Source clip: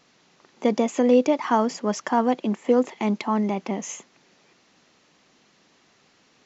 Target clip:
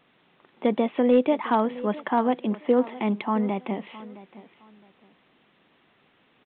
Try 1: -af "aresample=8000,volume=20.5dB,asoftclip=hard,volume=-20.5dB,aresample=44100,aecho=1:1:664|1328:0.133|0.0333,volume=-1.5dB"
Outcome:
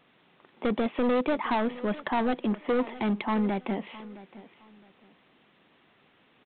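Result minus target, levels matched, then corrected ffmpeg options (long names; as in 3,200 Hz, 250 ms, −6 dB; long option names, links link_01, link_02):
gain into a clipping stage and back: distortion +25 dB
-af "aresample=8000,volume=9.5dB,asoftclip=hard,volume=-9.5dB,aresample=44100,aecho=1:1:664|1328:0.133|0.0333,volume=-1.5dB"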